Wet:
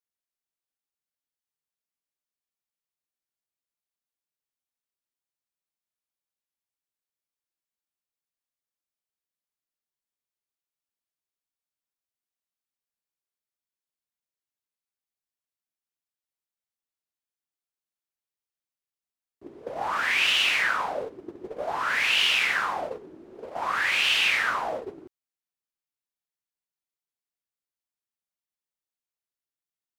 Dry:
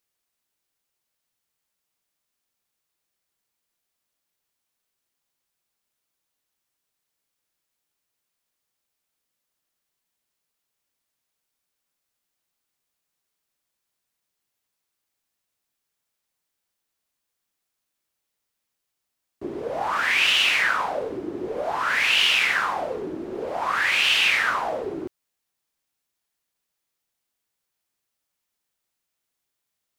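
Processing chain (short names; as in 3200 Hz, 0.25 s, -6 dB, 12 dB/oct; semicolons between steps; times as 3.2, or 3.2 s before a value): gate -28 dBFS, range -12 dB; gain -3 dB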